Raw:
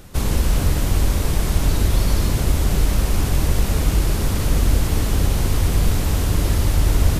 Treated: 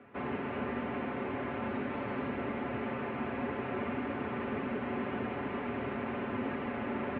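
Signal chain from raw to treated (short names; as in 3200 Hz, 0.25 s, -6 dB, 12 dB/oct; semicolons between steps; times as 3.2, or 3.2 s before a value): air absorption 180 m; comb 6.4 ms, depth 68%; mistuned SSB -64 Hz 260–2600 Hz; gain -6.5 dB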